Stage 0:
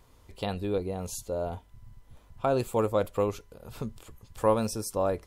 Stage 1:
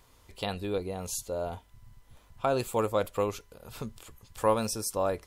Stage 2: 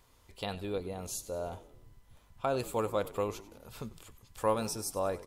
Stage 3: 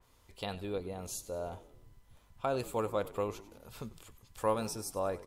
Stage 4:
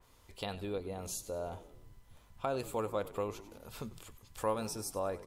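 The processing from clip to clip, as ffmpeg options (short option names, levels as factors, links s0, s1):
-af "tiltshelf=f=890:g=-3.5"
-filter_complex "[0:a]asplit=6[s0][s1][s2][s3][s4][s5];[s1]adelay=95,afreqshift=-60,volume=0.141[s6];[s2]adelay=190,afreqshift=-120,volume=0.0776[s7];[s3]adelay=285,afreqshift=-180,volume=0.0427[s8];[s4]adelay=380,afreqshift=-240,volume=0.0234[s9];[s5]adelay=475,afreqshift=-300,volume=0.0129[s10];[s0][s6][s7][s8][s9][s10]amix=inputs=6:normalize=0,volume=0.631"
-af "adynamicequalizer=threshold=0.00355:dfrequency=2900:dqfactor=0.7:tfrequency=2900:tqfactor=0.7:attack=5:release=100:ratio=0.375:range=2:mode=cutabove:tftype=highshelf,volume=0.841"
-filter_complex "[0:a]bandreject=f=60:t=h:w=6,bandreject=f=120:t=h:w=6,bandreject=f=180:t=h:w=6,asplit=2[s0][s1];[s1]acompressor=threshold=0.00891:ratio=6,volume=1.19[s2];[s0][s2]amix=inputs=2:normalize=0,volume=0.596"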